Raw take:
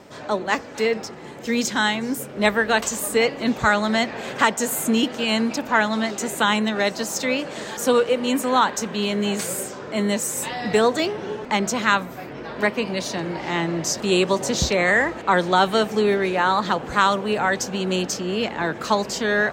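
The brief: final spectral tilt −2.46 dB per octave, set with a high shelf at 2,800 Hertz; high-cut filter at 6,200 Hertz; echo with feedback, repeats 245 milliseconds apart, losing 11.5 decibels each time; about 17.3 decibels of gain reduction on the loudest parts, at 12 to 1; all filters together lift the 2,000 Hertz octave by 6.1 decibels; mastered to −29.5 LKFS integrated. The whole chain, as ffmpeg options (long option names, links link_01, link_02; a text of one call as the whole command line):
ffmpeg -i in.wav -af "lowpass=6200,equalizer=frequency=2000:width_type=o:gain=4.5,highshelf=frequency=2800:gain=8.5,acompressor=threshold=-26dB:ratio=12,aecho=1:1:245|490|735:0.266|0.0718|0.0194,volume=-0.5dB" out.wav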